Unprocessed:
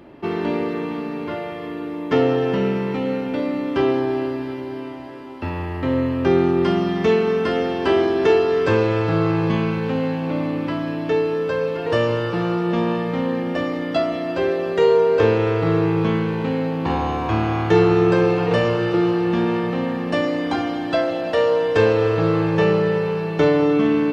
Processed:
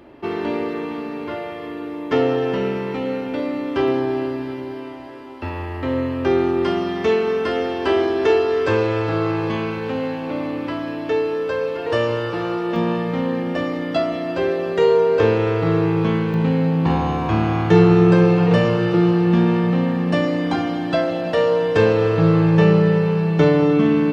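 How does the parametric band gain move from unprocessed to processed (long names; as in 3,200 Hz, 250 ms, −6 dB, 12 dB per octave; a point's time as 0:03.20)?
parametric band 170 Hz 0.63 octaves
−7 dB
from 0:03.88 +1 dB
from 0:04.72 −10 dB
from 0:12.76 +1.5 dB
from 0:16.34 +9 dB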